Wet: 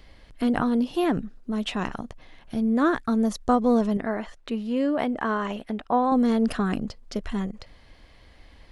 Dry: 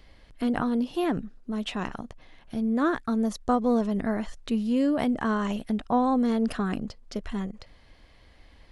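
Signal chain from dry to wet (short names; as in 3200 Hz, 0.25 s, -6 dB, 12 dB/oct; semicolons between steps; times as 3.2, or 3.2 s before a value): 3.97–6.12 tone controls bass -10 dB, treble -10 dB; gain +3 dB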